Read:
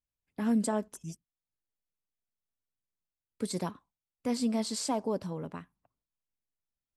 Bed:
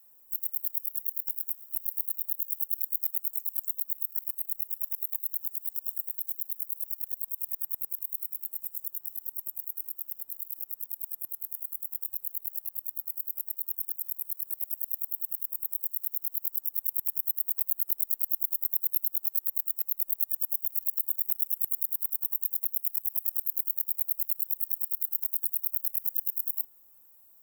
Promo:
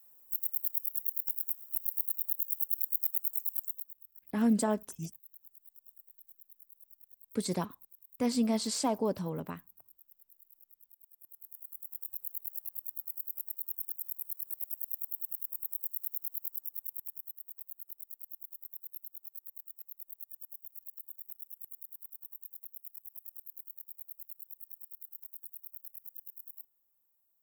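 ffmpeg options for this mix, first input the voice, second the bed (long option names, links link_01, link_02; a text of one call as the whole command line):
ffmpeg -i stem1.wav -i stem2.wav -filter_complex "[0:a]adelay=3950,volume=1dB[link_01];[1:a]volume=16dB,afade=type=out:start_time=3.5:duration=0.45:silence=0.0891251,afade=type=in:start_time=11.14:duration=1.17:silence=0.133352,afade=type=out:start_time=16.13:duration=1.25:silence=0.237137[link_02];[link_01][link_02]amix=inputs=2:normalize=0" out.wav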